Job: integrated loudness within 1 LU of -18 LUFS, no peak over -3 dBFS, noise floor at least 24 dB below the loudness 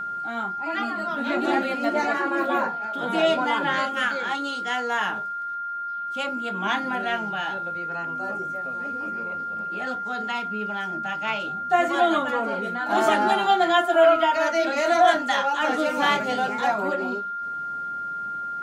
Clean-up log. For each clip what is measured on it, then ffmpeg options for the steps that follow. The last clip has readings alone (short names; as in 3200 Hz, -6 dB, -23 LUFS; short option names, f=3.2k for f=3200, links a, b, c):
steady tone 1400 Hz; tone level -28 dBFS; loudness -24.0 LUFS; peak -7.0 dBFS; loudness target -18.0 LUFS
-> -af "bandreject=f=1.4k:w=30"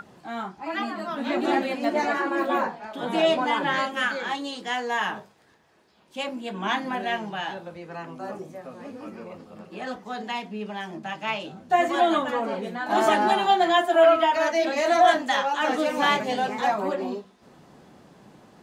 steady tone none; loudness -24.5 LUFS; peak -8.0 dBFS; loudness target -18.0 LUFS
-> -af "volume=6.5dB,alimiter=limit=-3dB:level=0:latency=1"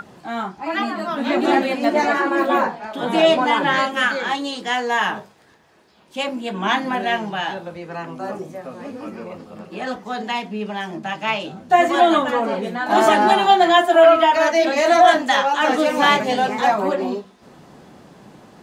loudness -18.0 LUFS; peak -3.0 dBFS; noise floor -51 dBFS